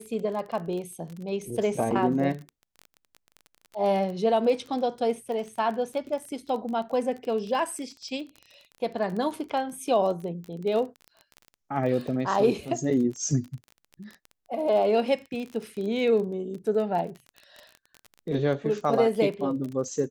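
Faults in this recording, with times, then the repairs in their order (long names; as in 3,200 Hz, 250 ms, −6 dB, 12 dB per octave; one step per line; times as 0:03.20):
surface crackle 27 per second −33 dBFS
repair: click removal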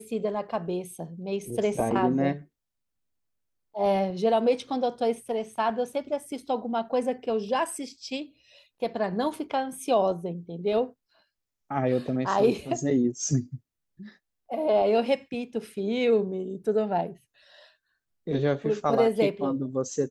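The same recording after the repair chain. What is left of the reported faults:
none of them is left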